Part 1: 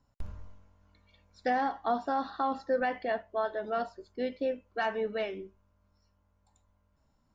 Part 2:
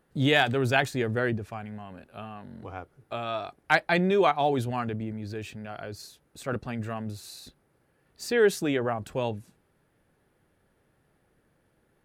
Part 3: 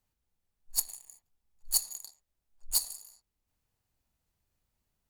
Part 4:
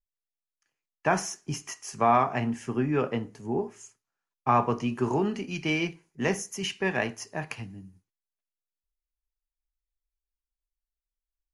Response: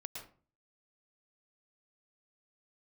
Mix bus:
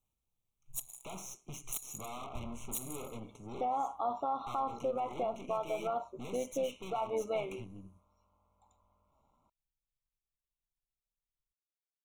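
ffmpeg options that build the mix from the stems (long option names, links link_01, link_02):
-filter_complex "[0:a]equalizer=frequency=960:width=0.65:gain=12,adelay=2150,volume=-4dB[link_01];[2:a]aeval=exprs='(mod(5.01*val(0)+1,2)-1)/5.01':channel_layout=same,volume=-2.5dB[link_02];[3:a]alimiter=limit=-17dB:level=0:latency=1:release=289,aeval=exprs='(tanh(100*val(0)+0.65)-tanh(0.65))/100':channel_layout=same,volume=-0.5dB[link_03];[link_01][link_02][link_03]amix=inputs=3:normalize=0,asuperstop=centerf=4800:order=20:qfactor=3.4,alimiter=limit=-23.5dB:level=0:latency=1:release=162,volume=0dB,tremolo=f=130:d=0.4,asuperstop=centerf=1700:order=12:qfactor=2.2"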